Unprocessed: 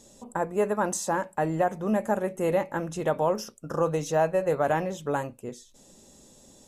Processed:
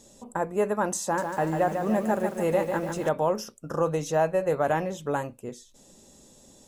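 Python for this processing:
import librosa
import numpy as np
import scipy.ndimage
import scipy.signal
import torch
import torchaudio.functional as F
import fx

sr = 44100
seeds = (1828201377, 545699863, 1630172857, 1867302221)

y = fx.echo_crushed(x, sr, ms=146, feedback_pct=55, bits=8, wet_db=-6.0, at=(1.03, 3.09))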